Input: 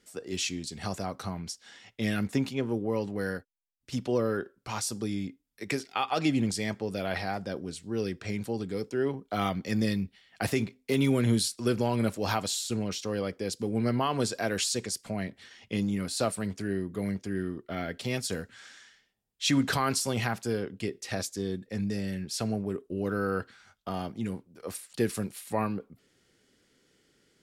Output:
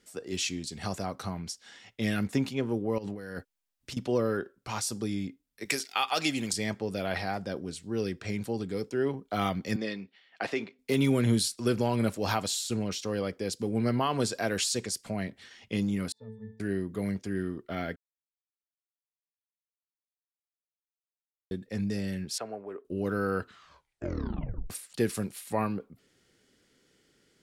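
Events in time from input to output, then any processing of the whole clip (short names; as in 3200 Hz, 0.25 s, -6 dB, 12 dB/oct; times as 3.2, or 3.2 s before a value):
2.98–3.97 negative-ratio compressor -39 dBFS
5.65–6.53 tilt +3 dB/oct
9.76–10.79 BPF 350–3800 Hz
16.12–16.6 octave resonator A, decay 0.54 s
17.96–21.51 mute
22.38–22.85 three-band isolator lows -23 dB, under 390 Hz, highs -21 dB, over 2300 Hz
23.39 tape stop 1.31 s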